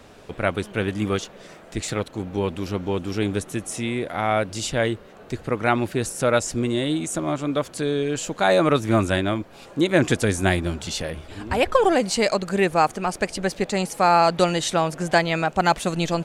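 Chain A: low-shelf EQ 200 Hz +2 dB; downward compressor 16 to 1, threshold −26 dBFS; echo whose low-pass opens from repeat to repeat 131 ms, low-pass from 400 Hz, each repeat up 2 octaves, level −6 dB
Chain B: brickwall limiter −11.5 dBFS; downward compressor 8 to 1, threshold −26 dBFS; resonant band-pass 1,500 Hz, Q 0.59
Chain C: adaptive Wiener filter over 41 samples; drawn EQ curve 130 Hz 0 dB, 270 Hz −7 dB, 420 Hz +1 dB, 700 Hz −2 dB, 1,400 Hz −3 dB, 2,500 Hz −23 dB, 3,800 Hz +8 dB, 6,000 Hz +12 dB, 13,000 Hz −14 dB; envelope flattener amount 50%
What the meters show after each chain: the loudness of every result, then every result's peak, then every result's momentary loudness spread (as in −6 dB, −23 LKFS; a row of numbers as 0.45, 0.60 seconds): −30.5, −36.5, −22.0 LKFS; −14.0, −16.5, −1.5 dBFS; 3, 7, 7 LU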